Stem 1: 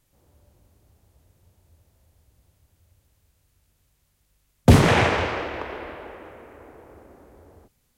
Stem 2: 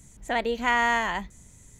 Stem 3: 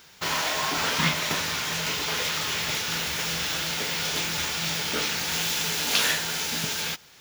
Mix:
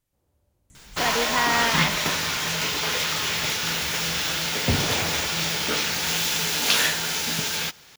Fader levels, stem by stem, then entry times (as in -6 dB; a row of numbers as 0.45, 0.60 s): -11.0, -1.0, +2.5 dB; 0.00, 0.70, 0.75 s